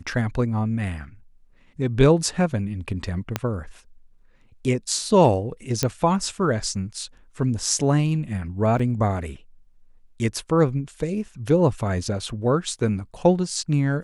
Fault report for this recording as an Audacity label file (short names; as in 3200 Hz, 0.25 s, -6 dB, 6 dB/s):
3.360000	3.360000	pop -8 dBFS
5.830000	5.830000	pop -6 dBFS
8.790000	8.790000	gap 4.7 ms